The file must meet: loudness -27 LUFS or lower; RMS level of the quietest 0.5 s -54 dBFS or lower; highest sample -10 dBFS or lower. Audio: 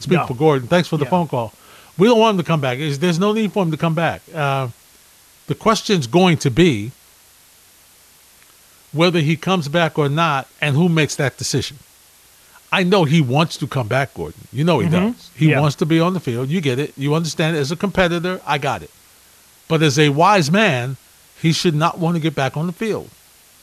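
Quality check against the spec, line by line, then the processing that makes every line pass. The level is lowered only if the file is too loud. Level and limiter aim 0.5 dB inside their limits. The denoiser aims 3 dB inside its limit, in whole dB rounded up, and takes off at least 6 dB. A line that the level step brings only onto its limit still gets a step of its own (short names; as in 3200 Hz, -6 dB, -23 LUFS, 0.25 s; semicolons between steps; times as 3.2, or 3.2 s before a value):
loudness -17.5 LUFS: fail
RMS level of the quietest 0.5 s -49 dBFS: fail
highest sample -2.5 dBFS: fail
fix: gain -10 dB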